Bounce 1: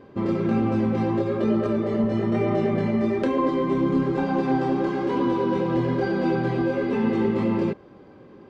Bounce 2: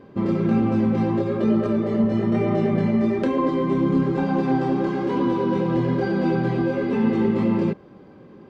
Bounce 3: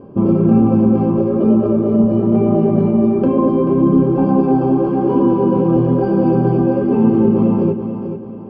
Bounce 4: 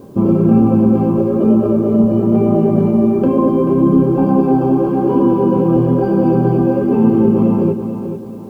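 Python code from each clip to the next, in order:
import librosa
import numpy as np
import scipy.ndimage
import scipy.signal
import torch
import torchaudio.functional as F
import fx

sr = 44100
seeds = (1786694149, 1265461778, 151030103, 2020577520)

y1 = fx.peak_eq(x, sr, hz=180.0, db=5.5, octaves=0.76)
y2 = fx.rider(y1, sr, range_db=10, speed_s=2.0)
y2 = np.convolve(y2, np.full(23, 1.0 / 23))[:len(y2)]
y2 = fx.echo_feedback(y2, sr, ms=437, feedback_pct=39, wet_db=-9)
y2 = y2 * librosa.db_to_amplitude(7.5)
y3 = fx.quant_dither(y2, sr, seeds[0], bits=10, dither='triangular')
y3 = y3 * librosa.db_to_amplitude(1.0)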